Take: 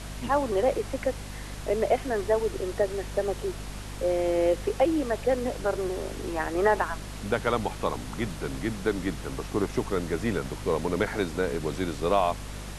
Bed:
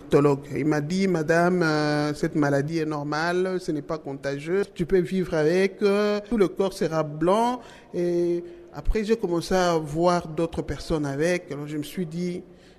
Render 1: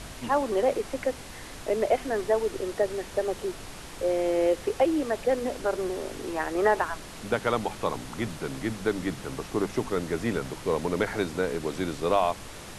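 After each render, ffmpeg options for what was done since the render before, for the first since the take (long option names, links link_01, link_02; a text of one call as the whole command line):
ffmpeg -i in.wav -af "bandreject=frequency=50:width_type=h:width=4,bandreject=frequency=100:width_type=h:width=4,bandreject=frequency=150:width_type=h:width=4,bandreject=frequency=200:width_type=h:width=4,bandreject=frequency=250:width_type=h:width=4" out.wav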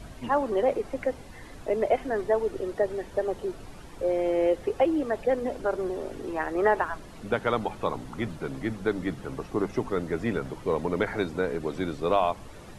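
ffmpeg -i in.wav -af "afftdn=noise_reduction=11:noise_floor=-42" out.wav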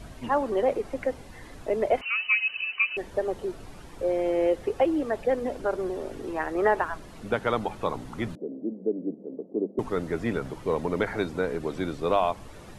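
ffmpeg -i in.wav -filter_complex "[0:a]asettb=1/sr,asplit=3[link_01][link_02][link_03];[link_01]atrim=end=2.014[link_04];[link_02]atrim=start=2.01:end=2.97,asetpts=PTS-STARTPTS,afade=type=in:duration=0.004:curve=qsin,afade=type=out:start_time=0.956:duration=0.004:curve=qsin,lowpass=frequency=2600:width_type=q:width=0.5098,lowpass=frequency=2600:width_type=q:width=0.6013,lowpass=frequency=2600:width_type=q:width=0.9,lowpass=frequency=2600:width_type=q:width=2.563,afreqshift=-3000[link_05];[link_03]atrim=start=2.966[link_06];[link_04][link_05]acrossfade=duration=0.004:curve1=hsin:curve2=qsin[link_07];[link_07][link_06]acrossfade=duration=0.004:curve1=qsin:curve2=hsin,asettb=1/sr,asplit=3[link_08][link_09][link_10];[link_08]atrim=end=8.354[link_11];[link_09]atrim=start=8.35:end=9.79,asetpts=PTS-STARTPTS,afade=type=in:duration=0.004:curve=qsin,afade=type=out:start_time=1.436:duration=0.004:curve=qsin,asuperpass=centerf=340:order=8:qfactor=0.89[link_12];[link_10]atrim=start=9.786[link_13];[link_11][link_12]acrossfade=duration=0.004:curve1=hsin:curve2=qsin[link_14];[link_14][link_13]acrossfade=duration=0.004:curve1=qsin:curve2=hsin" out.wav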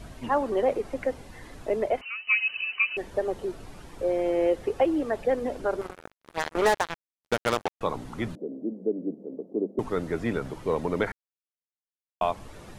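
ffmpeg -i in.wav -filter_complex "[0:a]asettb=1/sr,asplit=3[link_01][link_02][link_03];[link_01]atrim=end=5.814[link_04];[link_02]atrim=start=5.81:end=7.81,asetpts=PTS-STARTPTS,afade=type=in:duration=0.004:curve=qsin,afade=type=out:start_time=1.996:duration=0.004:curve=qsin,acrusher=bits=3:mix=0:aa=0.5[link_05];[link_03]atrim=start=7.806[link_06];[link_04][link_05]acrossfade=duration=0.004:curve1=hsin:curve2=qsin[link_07];[link_07][link_06]acrossfade=duration=0.004:curve1=qsin:curve2=hsin,asplit=4[link_08][link_09][link_10][link_11];[link_08]atrim=end=2.27,asetpts=PTS-STARTPTS,afade=type=out:start_time=1.73:duration=0.54:silence=0.223872[link_12];[link_09]atrim=start=2.27:end=11.12,asetpts=PTS-STARTPTS,afade=type=in:duration=0.004:curve=hsin:silence=0.223872,afade=type=out:start_time=8.846:duration=0.004:curve=hsin[link_13];[link_10]atrim=start=11.12:end=12.21,asetpts=PTS-STARTPTS,volume=0[link_14];[link_11]atrim=start=12.21,asetpts=PTS-STARTPTS,afade=type=in:duration=0.004:curve=hsin[link_15];[link_12][link_13][link_14][link_15]concat=n=4:v=0:a=1" out.wav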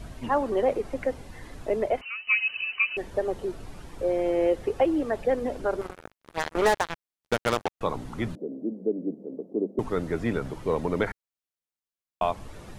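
ffmpeg -i in.wav -af "lowshelf=frequency=140:gain=4" out.wav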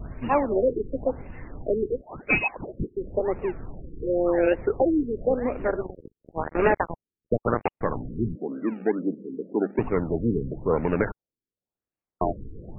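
ffmpeg -i in.wav -filter_complex "[0:a]asplit=2[link_01][link_02];[link_02]acrusher=samples=34:mix=1:aa=0.000001:lfo=1:lforange=20.4:lforate=2.3,volume=-4dB[link_03];[link_01][link_03]amix=inputs=2:normalize=0,afftfilt=real='re*lt(b*sr/1024,460*pow(2900/460,0.5+0.5*sin(2*PI*0.94*pts/sr)))':imag='im*lt(b*sr/1024,460*pow(2900/460,0.5+0.5*sin(2*PI*0.94*pts/sr)))':win_size=1024:overlap=0.75" out.wav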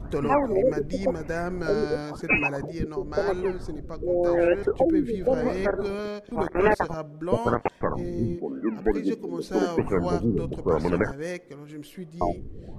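ffmpeg -i in.wav -i bed.wav -filter_complex "[1:a]volume=-9.5dB[link_01];[0:a][link_01]amix=inputs=2:normalize=0" out.wav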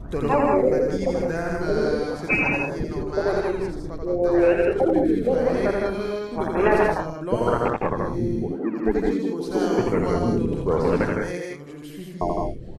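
ffmpeg -i in.wav -af "aecho=1:1:84|159|190|218:0.668|0.631|0.531|0.188" out.wav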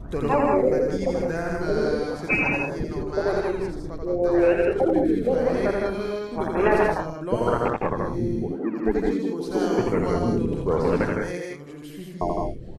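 ffmpeg -i in.wav -af "volume=-1dB" out.wav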